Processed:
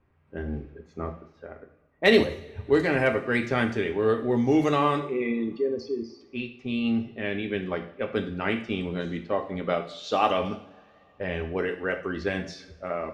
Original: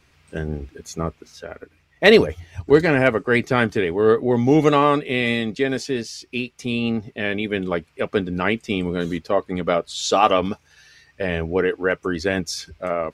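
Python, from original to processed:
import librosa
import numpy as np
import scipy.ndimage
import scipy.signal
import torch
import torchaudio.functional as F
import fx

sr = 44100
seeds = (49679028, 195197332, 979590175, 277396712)

y = fx.envelope_sharpen(x, sr, power=3.0, at=(5.0, 6.21))
y = fx.env_lowpass(y, sr, base_hz=1100.0, full_db=-14.0)
y = fx.rev_double_slope(y, sr, seeds[0], early_s=0.59, late_s=3.7, knee_db=-27, drr_db=4.5)
y = y * librosa.db_to_amplitude(-7.5)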